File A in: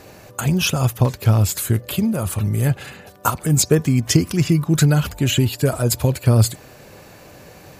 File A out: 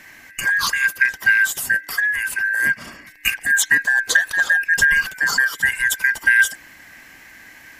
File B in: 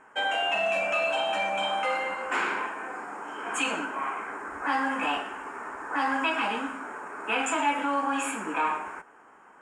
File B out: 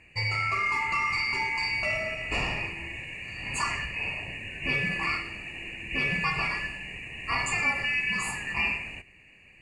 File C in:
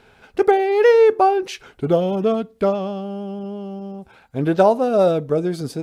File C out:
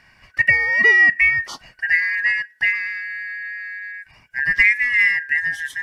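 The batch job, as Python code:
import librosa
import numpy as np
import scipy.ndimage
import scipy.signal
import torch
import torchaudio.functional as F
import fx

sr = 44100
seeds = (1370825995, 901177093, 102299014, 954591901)

y = fx.band_shuffle(x, sr, order='2143')
y = y * 10.0 ** (-1.0 / 20.0)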